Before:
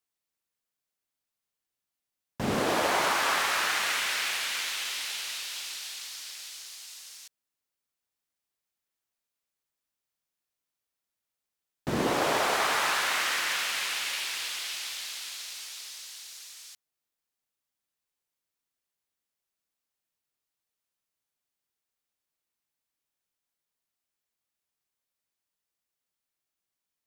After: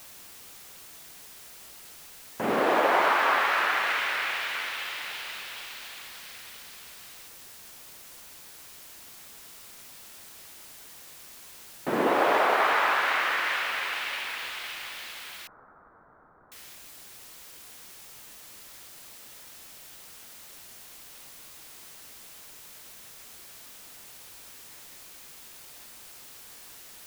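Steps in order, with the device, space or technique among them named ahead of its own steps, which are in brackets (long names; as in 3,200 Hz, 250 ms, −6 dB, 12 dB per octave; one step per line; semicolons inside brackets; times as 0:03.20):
wax cylinder (band-pass filter 310–2,200 Hz; tape wow and flutter; white noise bed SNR 15 dB)
0:15.47–0:16.52: elliptic low-pass filter 1,400 Hz, stop band 50 dB
level +5 dB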